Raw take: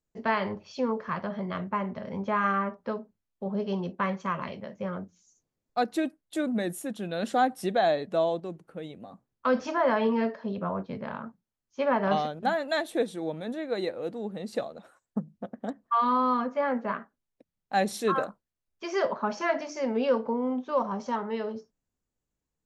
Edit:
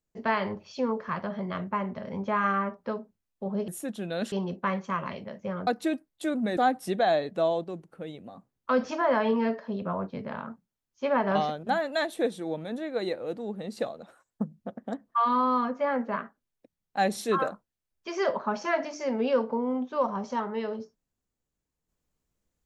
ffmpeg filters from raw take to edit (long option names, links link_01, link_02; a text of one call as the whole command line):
ffmpeg -i in.wav -filter_complex "[0:a]asplit=5[link_01][link_02][link_03][link_04][link_05];[link_01]atrim=end=3.682[link_06];[link_02]atrim=start=6.688:end=7.332[link_07];[link_03]atrim=start=3.678:end=5.032[link_08];[link_04]atrim=start=5.788:end=6.692[link_09];[link_05]atrim=start=7.328[link_10];[link_06][link_07]acrossfade=duration=0.004:curve1=hsin:curve2=hsin[link_11];[link_11][link_08]acrossfade=duration=0.004:curve1=hsin:curve2=hsin[link_12];[link_12][link_09]acrossfade=duration=0.004:curve1=hsin:curve2=hsin[link_13];[link_13][link_10]acrossfade=duration=0.004:curve1=hsin:curve2=hsin" out.wav